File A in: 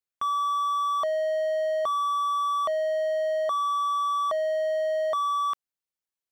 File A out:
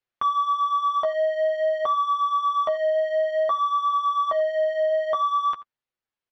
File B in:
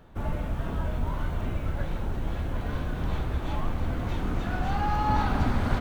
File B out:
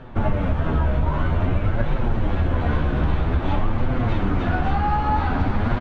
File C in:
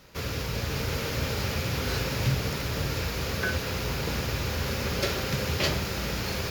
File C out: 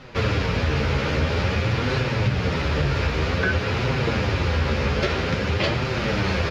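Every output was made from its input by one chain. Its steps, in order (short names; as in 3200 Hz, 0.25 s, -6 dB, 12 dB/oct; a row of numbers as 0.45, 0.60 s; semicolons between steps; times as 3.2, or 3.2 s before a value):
vocal rider 0.5 s; LPF 3200 Hz 12 dB/oct; echo 85 ms -20.5 dB; flange 0.51 Hz, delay 7.5 ms, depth 7.2 ms, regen +13%; compressor, threshold -28 dBFS; match loudness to -23 LUFS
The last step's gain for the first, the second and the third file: +9.0, +13.0, +11.5 dB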